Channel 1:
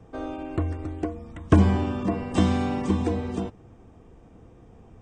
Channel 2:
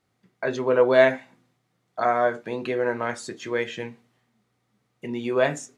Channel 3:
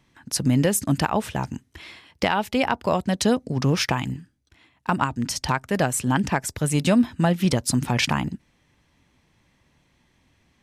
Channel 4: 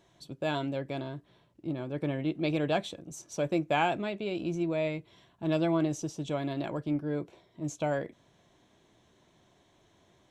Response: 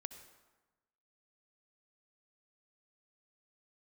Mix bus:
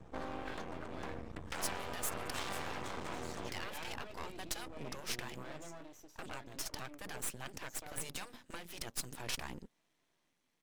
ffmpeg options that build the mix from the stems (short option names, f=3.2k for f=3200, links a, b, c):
-filter_complex "[0:a]acrossover=split=350|3000[a][b][c];[a]acompressor=threshold=-30dB:ratio=6[d];[d][b][c]amix=inputs=3:normalize=0,aeval=exprs='max(val(0),0)':c=same,volume=-1dB[e];[1:a]acompressor=threshold=-31dB:ratio=4,adelay=50,volume=-8.5dB[f];[2:a]highpass=210,highshelf=f=6.2k:g=8,adelay=1300,volume=-12.5dB[g];[3:a]highpass=f=410:p=1,flanger=delay=6.1:depth=6.3:regen=53:speed=0.61:shape=sinusoidal,volume=-8.5dB[h];[e][f][g][h]amix=inputs=4:normalize=0,afftfilt=real='re*lt(hypot(re,im),0.0794)':imag='im*lt(hypot(re,im),0.0794)':win_size=1024:overlap=0.75,aeval=exprs='max(val(0),0)':c=same"